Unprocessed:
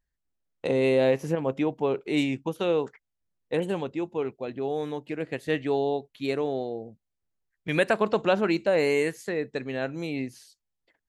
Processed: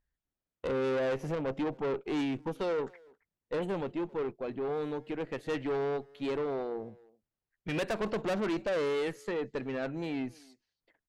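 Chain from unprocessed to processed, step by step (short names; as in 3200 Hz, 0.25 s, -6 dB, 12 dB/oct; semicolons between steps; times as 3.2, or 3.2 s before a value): high shelf 4500 Hz -11.5 dB; tube stage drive 28 dB, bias 0.3; speakerphone echo 0.27 s, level -20 dB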